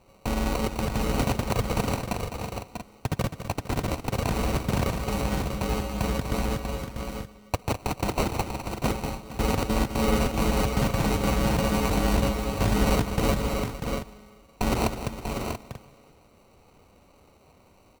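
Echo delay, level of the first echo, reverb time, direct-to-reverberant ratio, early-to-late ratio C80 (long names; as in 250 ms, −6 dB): 206 ms, −10.0 dB, no reverb audible, no reverb audible, no reverb audible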